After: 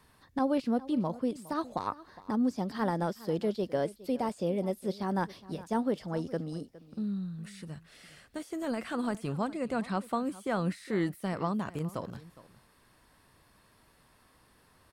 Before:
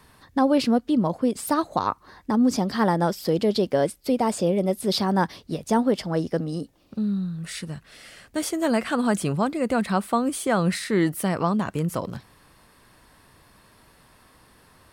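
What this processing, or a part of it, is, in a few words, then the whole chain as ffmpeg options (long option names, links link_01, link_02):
de-esser from a sidechain: -filter_complex "[0:a]asplit=2[link_01][link_02];[link_02]highpass=frequency=4600:width=0.5412,highpass=frequency=4600:width=1.3066,apad=whole_len=658202[link_03];[link_01][link_03]sidechaincompress=threshold=-42dB:ratio=16:attack=1.4:release=26,asettb=1/sr,asplit=3[link_04][link_05][link_06];[link_04]atrim=end=9.474[link_07];[link_05]atrim=start=9.47:end=10.04,asetpts=PTS-STARTPTS,afade=type=in:duration=0.004:curve=qsin,afade=type=out:start_time=0.566:duration=0.004:curve=qsin,lowpass=10000[link_08];[link_06]atrim=start=10.036[link_09];[link_07][link_08]acrossfade=duration=0.004:curve1=hsin:curve2=qsin[link_10];[link_10][link_09]acrossfade=duration=0.004:curve1=qsin:curve2=hsin,aecho=1:1:412:0.119,volume=-8.5dB"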